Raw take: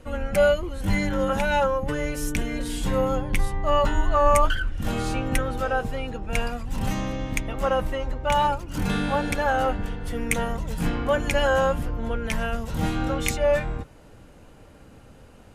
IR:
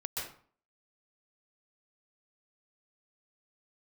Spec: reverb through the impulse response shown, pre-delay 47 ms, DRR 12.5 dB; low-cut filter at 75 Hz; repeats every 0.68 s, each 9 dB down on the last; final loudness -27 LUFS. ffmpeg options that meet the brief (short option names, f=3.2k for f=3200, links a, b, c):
-filter_complex "[0:a]highpass=75,aecho=1:1:680|1360|2040|2720:0.355|0.124|0.0435|0.0152,asplit=2[a][b];[1:a]atrim=start_sample=2205,adelay=47[c];[b][c]afir=irnorm=-1:irlink=0,volume=-15dB[d];[a][d]amix=inputs=2:normalize=0,volume=-2dB"